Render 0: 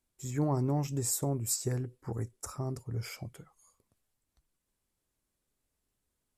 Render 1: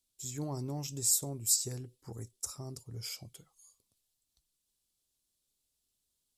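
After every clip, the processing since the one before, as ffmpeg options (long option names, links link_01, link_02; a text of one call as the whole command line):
ffmpeg -i in.wav -af "highshelf=frequency=2600:width_type=q:width=1.5:gain=11.5,volume=-8dB" out.wav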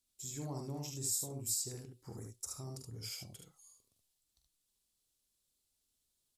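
ffmpeg -i in.wav -filter_complex "[0:a]acompressor=threshold=-44dB:ratio=1.5,asplit=2[link_01][link_02];[link_02]aecho=0:1:45|74:0.422|0.631[link_03];[link_01][link_03]amix=inputs=2:normalize=0,volume=-2dB" out.wav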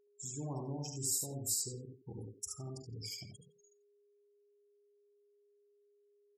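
ffmpeg -i in.wav -filter_complex "[0:a]afftfilt=real='re*gte(hypot(re,im),0.00562)':imag='im*gte(hypot(re,im),0.00562)':win_size=1024:overlap=0.75,aeval=exprs='val(0)+0.000316*sin(2*PI*410*n/s)':channel_layout=same,asplit=2[link_01][link_02];[link_02]adelay=90,highpass=300,lowpass=3400,asoftclip=type=hard:threshold=-30dB,volume=-6dB[link_03];[link_01][link_03]amix=inputs=2:normalize=0,volume=1dB" out.wav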